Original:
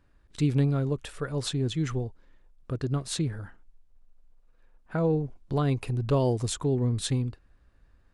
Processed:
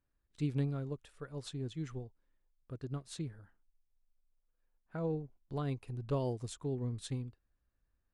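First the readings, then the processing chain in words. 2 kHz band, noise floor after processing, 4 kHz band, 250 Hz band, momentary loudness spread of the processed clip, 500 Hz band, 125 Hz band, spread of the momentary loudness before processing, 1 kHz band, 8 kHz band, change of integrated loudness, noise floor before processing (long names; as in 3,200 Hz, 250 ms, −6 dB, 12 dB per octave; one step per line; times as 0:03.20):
−13.0 dB, −81 dBFS, −14.5 dB, −11.0 dB, 11 LU, −11.0 dB, −11.0 dB, 10 LU, −11.0 dB, −15.0 dB, −11.0 dB, −62 dBFS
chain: expander for the loud parts 1.5 to 1, over −41 dBFS
level −9 dB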